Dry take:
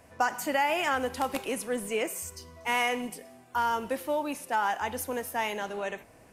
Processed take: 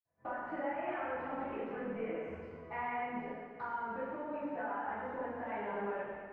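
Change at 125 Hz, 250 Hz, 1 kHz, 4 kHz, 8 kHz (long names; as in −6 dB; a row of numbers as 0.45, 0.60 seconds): −4.5 dB, −6.0 dB, −9.5 dB, −25.0 dB, below −40 dB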